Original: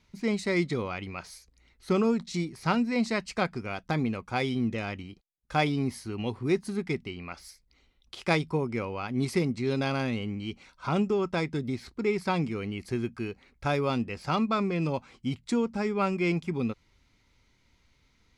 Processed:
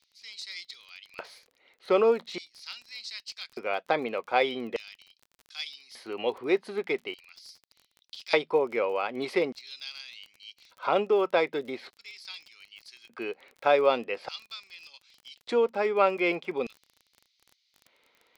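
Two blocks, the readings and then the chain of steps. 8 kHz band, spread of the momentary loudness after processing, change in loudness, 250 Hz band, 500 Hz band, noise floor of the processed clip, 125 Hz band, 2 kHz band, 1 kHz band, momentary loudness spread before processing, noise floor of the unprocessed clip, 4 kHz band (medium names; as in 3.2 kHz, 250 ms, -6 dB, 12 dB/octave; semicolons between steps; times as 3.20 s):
no reading, 21 LU, +1.0 dB, -9.0 dB, +4.0 dB, -74 dBFS, -20.5 dB, +0.5 dB, +1.5 dB, 10 LU, -67 dBFS, +2.0 dB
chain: resonant high shelf 4.9 kHz -11 dB, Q 1.5; LFO high-pass square 0.42 Hz 520–5100 Hz; crackle 28 per s -42 dBFS; trim +2 dB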